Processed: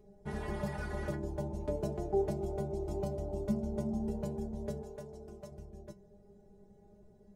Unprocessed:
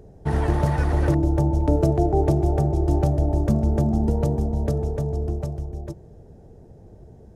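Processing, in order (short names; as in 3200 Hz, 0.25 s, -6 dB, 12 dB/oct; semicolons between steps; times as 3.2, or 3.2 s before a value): metallic resonator 200 Hz, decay 0.2 s, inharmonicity 0.002; 2.33–3.98 notch 1700 Hz, Q 5.5; 4.82–5.52 low shelf 270 Hz -9.5 dB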